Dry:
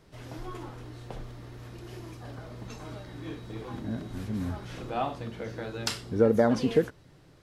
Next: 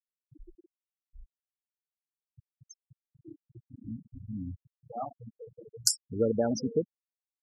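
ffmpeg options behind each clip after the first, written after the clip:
-af "aexciter=amount=9.4:drive=4.3:freq=5.3k,afftfilt=real='re*gte(hypot(re,im),0.112)':imag='im*gte(hypot(re,im),0.112)':win_size=1024:overlap=0.75,volume=-5dB"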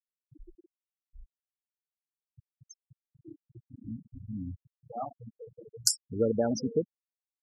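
-af anull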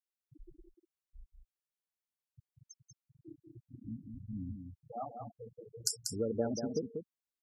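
-af "acompressor=threshold=-34dB:ratio=1.5,aecho=1:1:190:0.501,volume=-3.5dB"

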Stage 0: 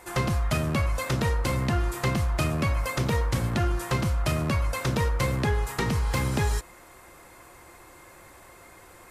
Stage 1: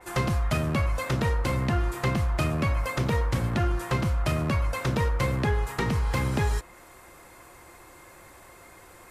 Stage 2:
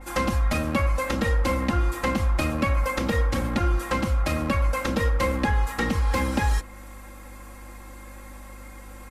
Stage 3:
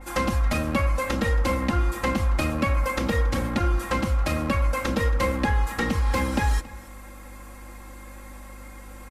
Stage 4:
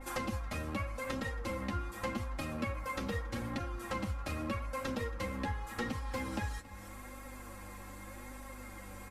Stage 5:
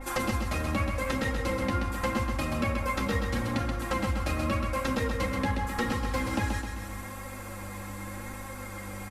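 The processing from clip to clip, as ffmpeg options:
-af "adynamicequalizer=threshold=0.00398:dfrequency=3700:dqfactor=0.7:tfrequency=3700:tqfactor=0.7:attack=5:release=100:ratio=0.375:range=2.5:mode=cutabove:tftype=highshelf"
-af "aeval=exprs='val(0)+0.00562*(sin(2*PI*50*n/s)+sin(2*PI*2*50*n/s)/2+sin(2*PI*3*50*n/s)/3+sin(2*PI*4*50*n/s)/4+sin(2*PI*5*50*n/s)/5)':c=same,aecho=1:1:3.7:0.99"
-af "aecho=1:1:276:0.1"
-af "acompressor=threshold=-34dB:ratio=2.5,flanger=delay=7.4:depth=3.3:regen=24:speed=0.83:shape=sinusoidal"
-af "aecho=1:1:130|260|390|520|650|780:0.562|0.287|0.146|0.0746|0.038|0.0194,volume=7dB"

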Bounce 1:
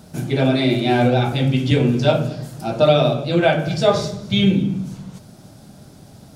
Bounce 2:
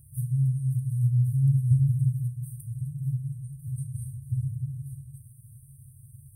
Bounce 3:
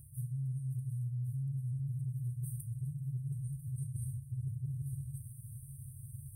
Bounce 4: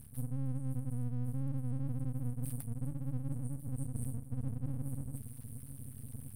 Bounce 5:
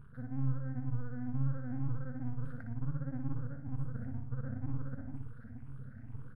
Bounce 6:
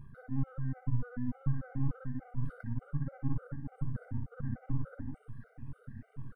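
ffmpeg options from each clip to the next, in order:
-af "highpass=f=74:p=1,afftfilt=real='re*(1-between(b*sr/4096,140,8300))':imag='im*(1-between(b*sr/4096,140,8300))':win_size=4096:overlap=0.75,equalizer=f=760:t=o:w=0.32:g=14"
-af "alimiter=limit=-21.5dB:level=0:latency=1:release=96,areverse,acompressor=threshold=-38dB:ratio=6,areverse,volume=2dB"
-af "aeval=exprs='max(val(0),0)':c=same,volume=5dB"
-af "afftfilt=real='re*pow(10,13/40*sin(2*PI*(0.66*log(max(b,1)*sr/1024/100)/log(2)-(2.1)*(pts-256)/sr)))':imag='im*pow(10,13/40*sin(2*PI*(0.66*log(max(b,1)*sr/1024/100)/log(2)-(2.1)*(pts-256)/sr)))':win_size=1024:overlap=0.75,lowpass=f=1.5k:t=q:w=6.2,aecho=1:1:60|120|180|240|300:0.447|0.192|0.0826|0.0355|0.0153,volume=-3dB"
-af "afftfilt=real='re*gt(sin(2*PI*3.4*pts/sr)*(1-2*mod(floor(b*sr/1024/390),2)),0)':imag='im*gt(sin(2*PI*3.4*pts/sr)*(1-2*mod(floor(b*sr/1024/390),2)),0)':win_size=1024:overlap=0.75,volume=4dB"

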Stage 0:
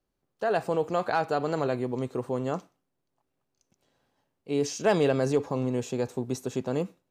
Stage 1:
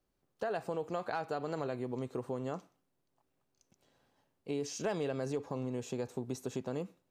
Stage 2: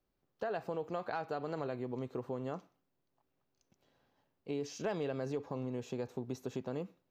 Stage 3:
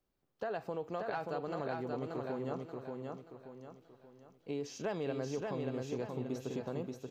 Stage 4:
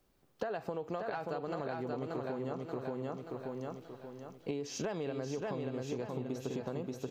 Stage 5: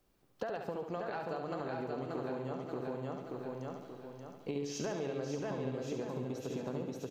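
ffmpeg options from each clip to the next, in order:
-af "acompressor=threshold=-36dB:ratio=3"
-af "equalizer=f=9k:w=1.5:g=-14,volume=-1.5dB"
-af "aecho=1:1:581|1162|1743|2324|2905:0.668|0.267|0.107|0.0428|0.0171,volume=-1dB"
-af "acompressor=threshold=-45dB:ratio=10,volume=11dB"
-af "aecho=1:1:70|140|210|280|350|420|490:0.473|0.265|0.148|0.0831|0.0465|0.0261|0.0146,volume=-1.5dB"

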